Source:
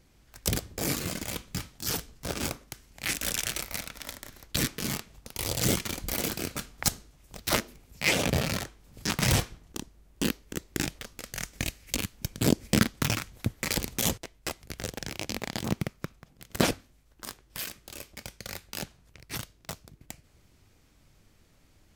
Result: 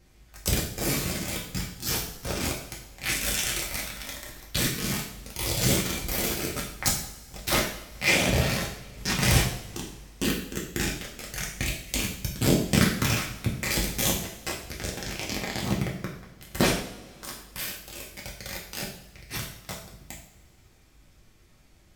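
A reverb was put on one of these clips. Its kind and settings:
coupled-rooms reverb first 0.58 s, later 2.9 s, from −22 dB, DRR −3.5 dB
level −1.5 dB

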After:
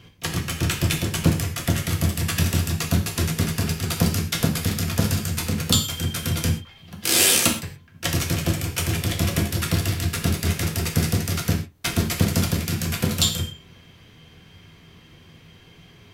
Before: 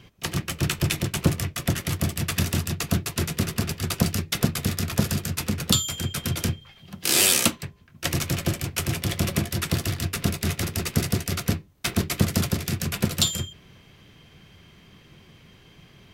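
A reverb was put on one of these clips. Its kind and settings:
reverb whose tail is shaped and stops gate 150 ms falling, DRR 2 dB

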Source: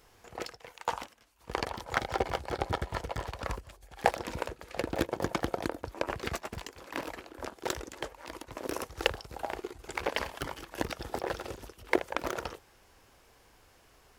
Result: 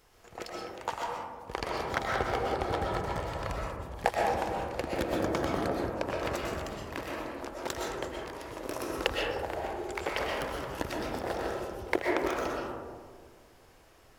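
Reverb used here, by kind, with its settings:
comb and all-pass reverb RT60 1.8 s, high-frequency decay 0.25×, pre-delay 85 ms, DRR −2.5 dB
level −2.5 dB

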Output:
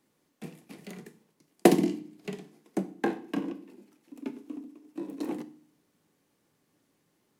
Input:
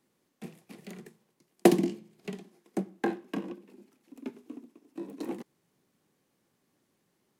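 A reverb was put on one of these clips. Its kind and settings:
feedback delay network reverb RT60 0.49 s, low-frequency decay 1.35×, high-frequency decay 0.9×, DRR 10 dB
level +1.5 dB

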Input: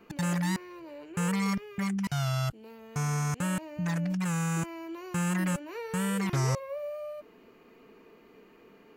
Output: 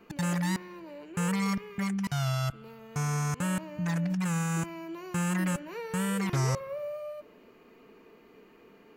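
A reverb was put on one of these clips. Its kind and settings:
spring reverb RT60 1.8 s, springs 59 ms, DRR 19.5 dB

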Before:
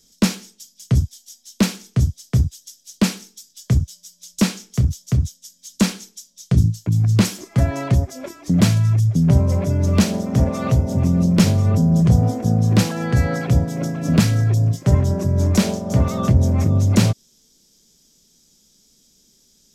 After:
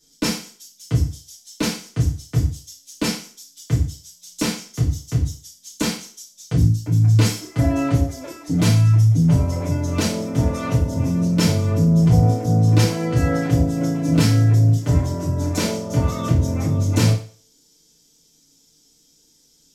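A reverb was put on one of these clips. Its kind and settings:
feedback delay network reverb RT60 0.43 s, low-frequency decay 0.8×, high-frequency decay 0.95×, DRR −7 dB
level −8 dB

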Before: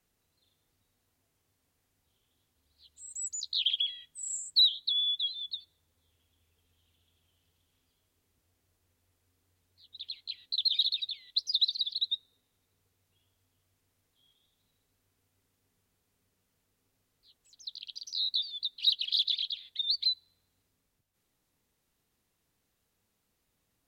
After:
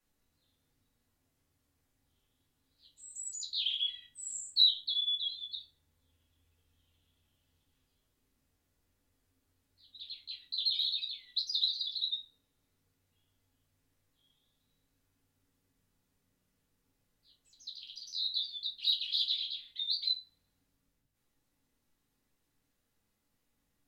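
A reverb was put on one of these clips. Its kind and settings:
rectangular room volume 190 cubic metres, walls furnished, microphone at 2.4 metres
level −7.5 dB

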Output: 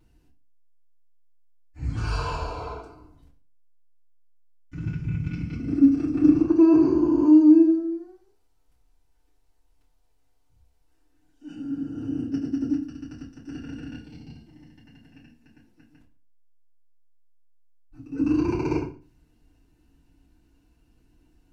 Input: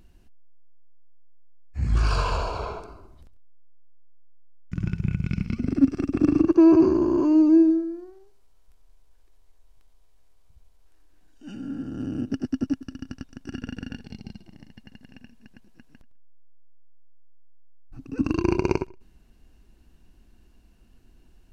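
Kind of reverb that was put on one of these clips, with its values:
feedback delay network reverb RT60 0.35 s, low-frequency decay 1.25×, high-frequency decay 0.85×, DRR −8.5 dB
level −13 dB

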